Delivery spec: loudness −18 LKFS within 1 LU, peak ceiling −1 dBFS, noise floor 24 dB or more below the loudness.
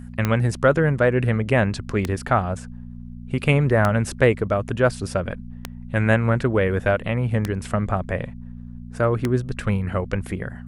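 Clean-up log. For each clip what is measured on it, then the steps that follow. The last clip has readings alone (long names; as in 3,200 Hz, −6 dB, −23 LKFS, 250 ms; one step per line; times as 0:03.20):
number of clicks 6; mains hum 60 Hz; hum harmonics up to 240 Hz; level of the hum −36 dBFS; integrated loudness −22.0 LKFS; sample peak −2.5 dBFS; target loudness −18.0 LKFS
→ click removal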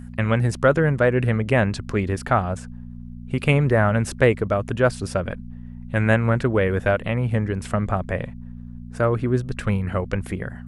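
number of clicks 0; mains hum 60 Hz; hum harmonics up to 240 Hz; level of the hum −36 dBFS
→ hum removal 60 Hz, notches 4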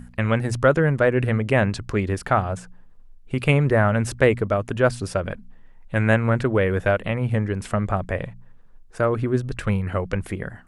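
mains hum none found; integrated loudness −22.0 LKFS; sample peak −3.0 dBFS; target loudness −18.0 LKFS
→ level +4 dB
brickwall limiter −1 dBFS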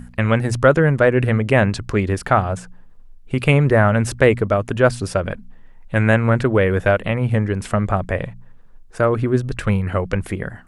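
integrated loudness −18.5 LKFS; sample peak −1.0 dBFS; background noise floor −43 dBFS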